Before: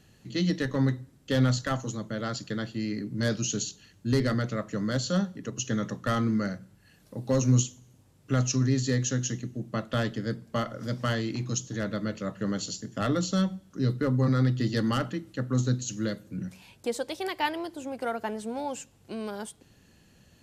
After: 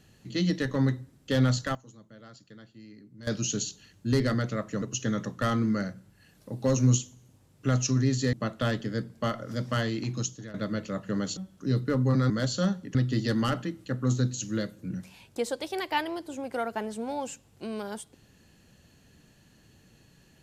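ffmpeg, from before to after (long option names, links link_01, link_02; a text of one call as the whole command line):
ffmpeg -i in.wav -filter_complex "[0:a]asplit=9[link_01][link_02][link_03][link_04][link_05][link_06][link_07][link_08][link_09];[link_01]atrim=end=1.75,asetpts=PTS-STARTPTS,afade=type=out:start_time=1.54:duration=0.21:curve=log:silence=0.133352[link_10];[link_02]atrim=start=1.75:end=3.27,asetpts=PTS-STARTPTS,volume=-17.5dB[link_11];[link_03]atrim=start=3.27:end=4.822,asetpts=PTS-STARTPTS,afade=type=in:duration=0.21:curve=log:silence=0.133352[link_12];[link_04]atrim=start=5.468:end=8.982[link_13];[link_05]atrim=start=9.648:end=11.86,asetpts=PTS-STARTPTS,afade=type=out:start_time=1.862:duration=0.35:silence=0.141254[link_14];[link_06]atrim=start=11.86:end=12.692,asetpts=PTS-STARTPTS,afade=type=in:duration=0.004:curve=hsin:silence=0.141254[link_15];[link_07]atrim=start=13.498:end=14.432[link_16];[link_08]atrim=start=4.818:end=5.472[link_17];[link_09]atrim=start=14.428[link_18];[link_10][link_11][link_12]concat=n=3:v=0:a=1[link_19];[link_19][link_13]acrossfade=duration=0.004:curve1=hsin:curve2=hsin[link_20];[link_14][link_15]concat=n=2:v=0:a=1[link_21];[link_20][link_21]acrossfade=duration=0.004:curve1=hsin:curve2=hsin[link_22];[link_22][link_16]acrossfade=duration=0.004:curve1=hsin:curve2=hsin[link_23];[link_23][link_17]acrossfade=duration=0.004:curve1=hsin:curve2=hsin[link_24];[link_24][link_18]acrossfade=duration=0.004:curve1=hsin:curve2=hsin" out.wav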